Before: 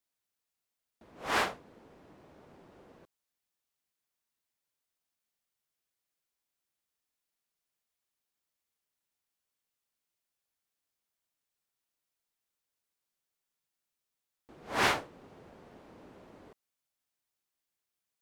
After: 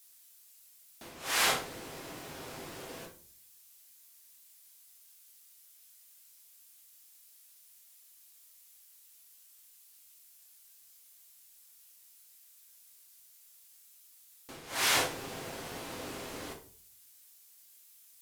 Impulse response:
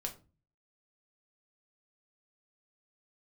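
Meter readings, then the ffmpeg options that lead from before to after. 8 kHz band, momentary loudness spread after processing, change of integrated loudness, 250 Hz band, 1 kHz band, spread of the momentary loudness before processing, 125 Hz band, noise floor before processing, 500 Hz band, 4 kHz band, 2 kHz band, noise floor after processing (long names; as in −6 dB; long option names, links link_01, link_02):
+11.5 dB, 22 LU, −2.5 dB, +0.5 dB, −1.5 dB, 9 LU, +1.5 dB, below −85 dBFS, +0.5 dB, +6.5 dB, +1.0 dB, −60 dBFS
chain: -filter_complex "[0:a]crystalizer=i=10:c=0,areverse,acompressor=threshold=-34dB:ratio=8,areverse[link_01];[1:a]atrim=start_sample=2205,asetrate=29988,aresample=44100[link_02];[link_01][link_02]afir=irnorm=-1:irlink=0,volume=6.5dB"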